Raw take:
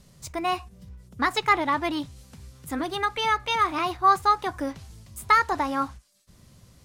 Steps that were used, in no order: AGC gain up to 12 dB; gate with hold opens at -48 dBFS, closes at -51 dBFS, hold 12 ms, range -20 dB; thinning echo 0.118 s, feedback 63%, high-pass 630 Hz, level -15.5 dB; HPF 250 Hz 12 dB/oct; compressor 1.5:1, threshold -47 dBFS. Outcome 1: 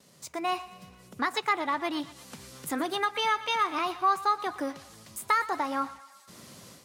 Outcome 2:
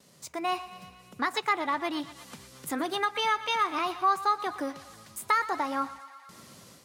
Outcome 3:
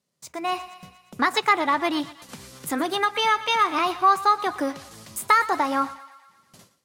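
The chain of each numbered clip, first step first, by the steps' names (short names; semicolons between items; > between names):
AGC > gate with hold > HPF > compressor > thinning echo; gate with hold > AGC > thinning echo > compressor > HPF; HPF > compressor > gate with hold > thinning echo > AGC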